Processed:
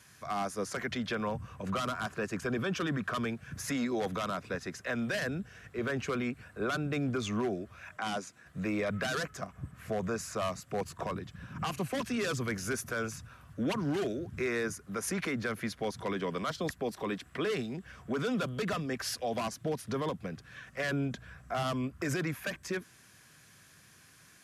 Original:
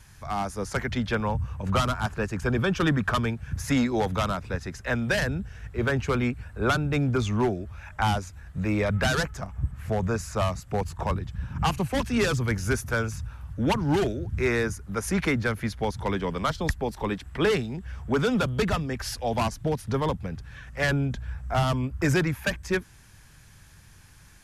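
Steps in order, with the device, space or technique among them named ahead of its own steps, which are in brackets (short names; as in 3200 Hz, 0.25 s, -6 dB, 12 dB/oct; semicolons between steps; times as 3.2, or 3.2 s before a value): PA system with an anti-feedback notch (HPF 190 Hz 12 dB/oct; Butterworth band-stop 870 Hz, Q 6.2; limiter -22.5 dBFS, peak gain reduction 10.5 dB); 7.97–8.46 Chebyshev band-pass 200–9000 Hz, order 2; gain -2 dB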